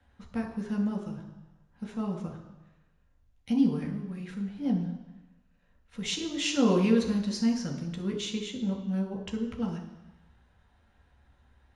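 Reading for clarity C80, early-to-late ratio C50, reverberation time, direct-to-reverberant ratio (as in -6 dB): 10.0 dB, 7.5 dB, 1.0 s, 1.0 dB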